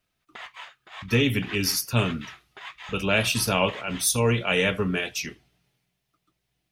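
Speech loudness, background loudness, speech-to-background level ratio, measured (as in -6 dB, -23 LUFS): -24.0 LUFS, -42.0 LUFS, 18.0 dB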